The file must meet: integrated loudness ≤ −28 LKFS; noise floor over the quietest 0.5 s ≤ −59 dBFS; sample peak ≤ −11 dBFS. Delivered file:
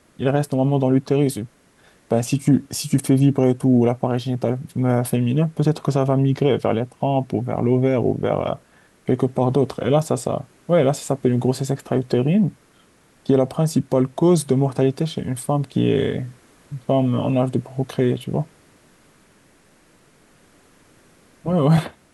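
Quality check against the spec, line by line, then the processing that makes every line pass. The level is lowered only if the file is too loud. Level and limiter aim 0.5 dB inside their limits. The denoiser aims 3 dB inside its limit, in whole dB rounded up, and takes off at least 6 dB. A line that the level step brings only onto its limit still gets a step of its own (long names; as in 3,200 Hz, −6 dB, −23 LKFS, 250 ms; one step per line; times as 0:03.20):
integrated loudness −20.5 LKFS: out of spec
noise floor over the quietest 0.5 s −55 dBFS: out of spec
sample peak −6.0 dBFS: out of spec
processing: level −8 dB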